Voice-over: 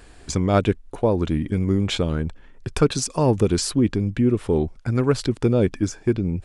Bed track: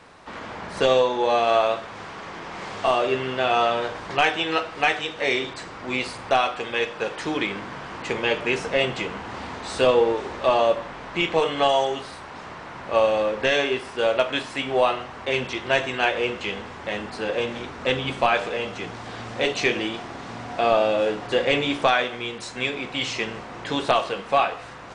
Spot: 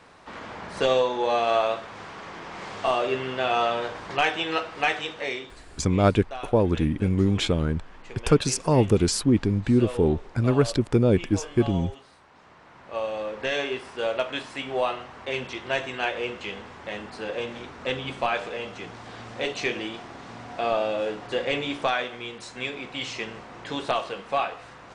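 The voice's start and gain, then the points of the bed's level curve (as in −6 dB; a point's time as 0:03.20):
5.50 s, −1.0 dB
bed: 0:05.11 −3 dB
0:05.64 −16.5 dB
0:12.29 −16.5 dB
0:13.60 −5.5 dB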